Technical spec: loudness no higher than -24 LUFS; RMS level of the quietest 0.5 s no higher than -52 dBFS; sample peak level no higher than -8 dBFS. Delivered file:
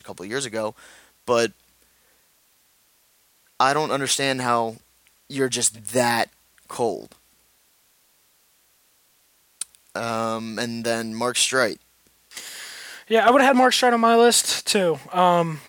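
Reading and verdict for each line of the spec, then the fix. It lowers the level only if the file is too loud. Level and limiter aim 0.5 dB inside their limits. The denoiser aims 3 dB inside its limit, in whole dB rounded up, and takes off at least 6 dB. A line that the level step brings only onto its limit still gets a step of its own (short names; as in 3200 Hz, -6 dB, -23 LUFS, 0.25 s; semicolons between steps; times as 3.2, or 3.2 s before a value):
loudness -21.0 LUFS: fail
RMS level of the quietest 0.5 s -62 dBFS: OK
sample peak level -4.5 dBFS: fail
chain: gain -3.5 dB; limiter -8.5 dBFS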